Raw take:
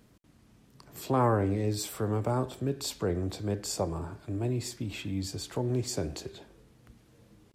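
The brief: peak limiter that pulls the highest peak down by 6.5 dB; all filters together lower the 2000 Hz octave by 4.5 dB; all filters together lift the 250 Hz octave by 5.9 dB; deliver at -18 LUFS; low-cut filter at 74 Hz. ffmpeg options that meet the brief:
-af "highpass=74,equalizer=f=250:t=o:g=7.5,equalizer=f=2k:t=o:g=-6.5,volume=13dB,alimiter=limit=-6.5dB:level=0:latency=1"

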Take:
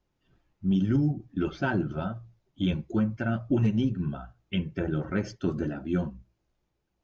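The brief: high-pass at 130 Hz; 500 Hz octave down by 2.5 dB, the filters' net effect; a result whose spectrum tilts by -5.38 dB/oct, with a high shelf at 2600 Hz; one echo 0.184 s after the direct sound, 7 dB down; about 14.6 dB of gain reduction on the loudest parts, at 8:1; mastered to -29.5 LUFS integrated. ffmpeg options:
-af "highpass=130,equalizer=f=500:t=o:g=-4,highshelf=f=2.6k:g=7.5,acompressor=threshold=-38dB:ratio=8,aecho=1:1:184:0.447,volume=13dB"

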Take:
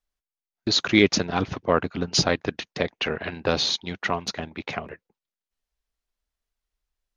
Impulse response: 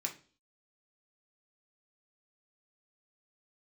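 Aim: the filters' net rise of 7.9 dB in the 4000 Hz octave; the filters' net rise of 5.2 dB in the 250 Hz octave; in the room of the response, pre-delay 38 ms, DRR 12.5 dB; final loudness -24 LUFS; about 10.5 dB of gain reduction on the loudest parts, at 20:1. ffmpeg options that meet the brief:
-filter_complex "[0:a]equalizer=f=250:t=o:g=7,equalizer=f=4k:t=o:g=9,acompressor=threshold=-17dB:ratio=20,asplit=2[a][b];[1:a]atrim=start_sample=2205,adelay=38[c];[b][c]afir=irnorm=-1:irlink=0,volume=-13.5dB[d];[a][d]amix=inputs=2:normalize=0"

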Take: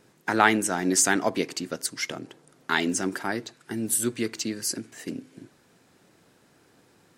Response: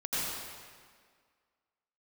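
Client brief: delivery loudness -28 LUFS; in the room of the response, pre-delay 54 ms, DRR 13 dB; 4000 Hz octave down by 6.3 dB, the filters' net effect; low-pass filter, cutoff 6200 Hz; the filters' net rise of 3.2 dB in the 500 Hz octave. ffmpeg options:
-filter_complex "[0:a]lowpass=6.2k,equalizer=f=500:t=o:g=4.5,equalizer=f=4k:t=o:g=-7.5,asplit=2[a][b];[1:a]atrim=start_sample=2205,adelay=54[c];[b][c]afir=irnorm=-1:irlink=0,volume=-20.5dB[d];[a][d]amix=inputs=2:normalize=0,volume=-1.5dB"

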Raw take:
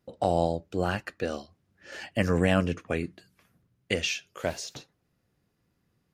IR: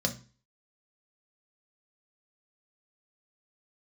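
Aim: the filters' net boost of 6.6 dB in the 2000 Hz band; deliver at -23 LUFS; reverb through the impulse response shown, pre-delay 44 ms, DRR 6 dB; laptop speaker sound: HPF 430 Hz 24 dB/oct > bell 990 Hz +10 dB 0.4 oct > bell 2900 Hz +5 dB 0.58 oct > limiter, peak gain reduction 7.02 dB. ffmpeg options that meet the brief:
-filter_complex "[0:a]equalizer=f=2k:t=o:g=5.5,asplit=2[a][b];[1:a]atrim=start_sample=2205,adelay=44[c];[b][c]afir=irnorm=-1:irlink=0,volume=-12.5dB[d];[a][d]amix=inputs=2:normalize=0,highpass=f=430:w=0.5412,highpass=f=430:w=1.3066,equalizer=f=990:t=o:w=0.4:g=10,equalizer=f=2.9k:t=o:w=0.58:g=5,volume=5.5dB,alimiter=limit=-8dB:level=0:latency=1"

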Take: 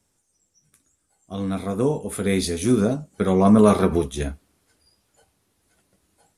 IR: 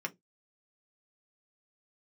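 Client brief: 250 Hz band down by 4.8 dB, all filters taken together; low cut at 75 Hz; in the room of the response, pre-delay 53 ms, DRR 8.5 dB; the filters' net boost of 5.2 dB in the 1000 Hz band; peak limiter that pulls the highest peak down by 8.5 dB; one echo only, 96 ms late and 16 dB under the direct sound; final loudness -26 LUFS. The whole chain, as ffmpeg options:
-filter_complex "[0:a]highpass=75,equalizer=f=250:t=o:g=-6.5,equalizer=f=1k:t=o:g=7,alimiter=limit=-11.5dB:level=0:latency=1,aecho=1:1:96:0.158,asplit=2[a][b];[1:a]atrim=start_sample=2205,adelay=53[c];[b][c]afir=irnorm=-1:irlink=0,volume=-11dB[d];[a][d]amix=inputs=2:normalize=0,volume=-2dB"

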